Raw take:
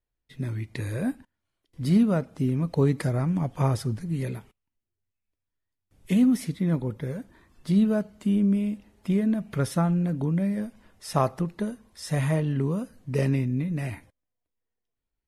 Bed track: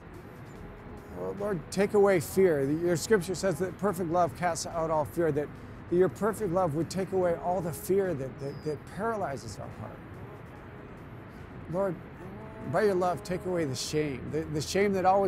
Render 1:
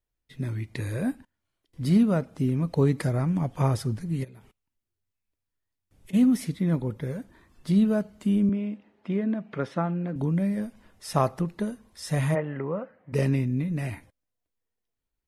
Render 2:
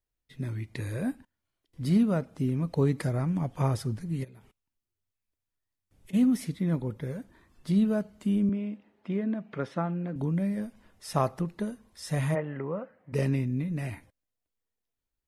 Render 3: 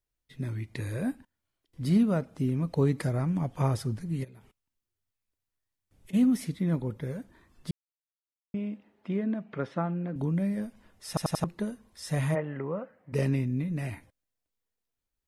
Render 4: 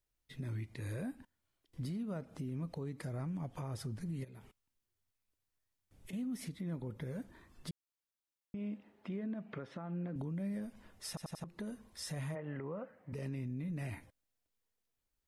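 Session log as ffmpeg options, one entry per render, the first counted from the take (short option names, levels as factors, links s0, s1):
-filter_complex "[0:a]asplit=3[s0][s1][s2];[s0]afade=t=out:st=4.23:d=0.02[s3];[s1]acompressor=threshold=0.00631:ratio=20:attack=3.2:release=140:knee=1:detection=peak,afade=t=in:st=4.23:d=0.02,afade=t=out:st=6.13:d=0.02[s4];[s2]afade=t=in:st=6.13:d=0.02[s5];[s3][s4][s5]amix=inputs=3:normalize=0,asettb=1/sr,asplit=3[s6][s7][s8];[s6]atrim=end=8.494[s9];[s7]atrim=start=8.49:end=10.16,asetpts=PTS-STARTPTS,afade=t=in:d=0.004:c=qsin,afade=t=out:st=1.666:d=0.004:c=qsin,highpass=220,lowpass=2800[s10];[s8]atrim=start=10.156[s11];[s9][s10]acrossfade=d=0.004:c1=hsin:c2=qsin[s12];[s12][s11]acrossfade=d=0.004:c1=qsin:c2=hsin,asplit=3[s13][s14][s15];[s13]afade=t=out:st=12.34:d=0.02[s16];[s14]highpass=230,equalizer=f=250:t=q:w=4:g=-8,equalizer=f=380:t=q:w=4:g=-3,equalizer=f=550:t=q:w=4:g=8,equalizer=f=800:t=q:w=4:g=5,equalizer=f=1300:t=q:w=4:g=5,equalizer=f=2000:t=q:w=4:g=7,lowpass=f=2300:w=0.5412,lowpass=f=2300:w=1.3066,afade=t=in:st=12.34:d=0.02,afade=t=out:st=13.12:d=0.02[s17];[s15]afade=t=in:st=13.12:d=0.02[s18];[s16][s17][s18]amix=inputs=3:normalize=0"
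-af "volume=0.708"
-filter_complex "[0:a]asettb=1/sr,asplit=3[s0][s1][s2];[s0]atrim=end=9.444[s3];[s1]atrim=start=9.44:end=10.14,asetpts=PTS-STARTPTS,afade=t=in:d=0.004:c=qsin,afade=t=out:st=0.696:d=0.004:c=qsin,highshelf=f=7000:g=-11[s4];[s2]atrim=start=10.136[s5];[s3][s4]acrossfade=d=0.004:c1=hsin:c2=qsin[s6];[s6][s5]acrossfade=d=0.004:c1=qsin:c2=hsin,asplit=7[s7][s8][s9][s10][s11][s12][s13];[s7]atrim=end=7.71,asetpts=PTS-STARTPTS,afade=t=out:st=7.706:d=0.004:c=hsin[s14];[s8]atrim=start=7.71:end=8.54,asetpts=PTS-STARTPTS,volume=0[s15];[s9]atrim=start=8.54:end=11.172,asetpts=PTS-STARTPTS,afade=t=in:d=0.004:c=hsin[s16];[s10]atrim=start=11.078:end=11.172[s17];[s11]atrim=start=11.078:end=11.172[s18];[s12]atrim=start=11.078:end=11.172[s19];[s13]atrim=start=11.438[s20];[s14][s15][s16]concat=n=3:v=0:a=1[s21];[s21][s17]acrossfade=d=0.004:c1=hsin:c2=hsin[s22];[s22][s18]acrossfade=d=0.004:c1=hsin:c2=hsin[s23];[s23][s19]acrossfade=d=0.004:c1=hsin:c2=hsin[s24];[s24][s20]acrossfade=d=0.004:c1=hsin:c2=hsin"
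-af "acompressor=threshold=0.0251:ratio=6,alimiter=level_in=2.99:limit=0.0631:level=0:latency=1:release=180,volume=0.335"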